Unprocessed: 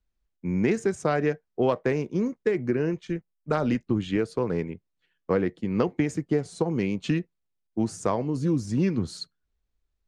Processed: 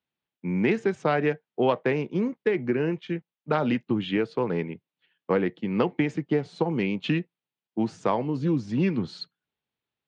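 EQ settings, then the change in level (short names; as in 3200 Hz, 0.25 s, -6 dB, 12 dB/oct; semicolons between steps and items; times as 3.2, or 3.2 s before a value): HPF 120 Hz 24 dB/oct; synth low-pass 3200 Hz, resonance Q 1.9; bell 860 Hz +5.5 dB 0.26 oct; 0.0 dB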